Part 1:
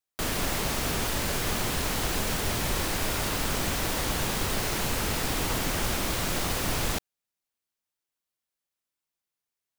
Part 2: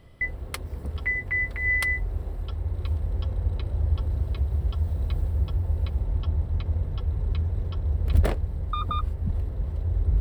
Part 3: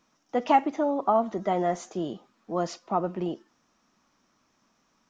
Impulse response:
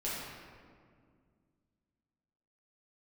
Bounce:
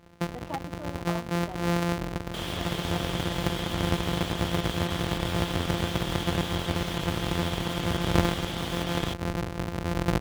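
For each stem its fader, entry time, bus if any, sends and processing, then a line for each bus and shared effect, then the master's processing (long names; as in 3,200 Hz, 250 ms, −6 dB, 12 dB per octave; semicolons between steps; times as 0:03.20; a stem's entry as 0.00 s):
−6.5 dB, 2.15 s, no send, gate on every frequency bin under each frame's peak −30 dB strong; parametric band 3,300 Hz +13 dB 0.35 octaves
0.0 dB, 0.00 s, no send, samples sorted by size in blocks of 256 samples
−15.5 dB, 0.00 s, no send, no processing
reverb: not used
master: high-pass filter 150 Hz 6 dB per octave; high-shelf EQ 5,100 Hz −7.5 dB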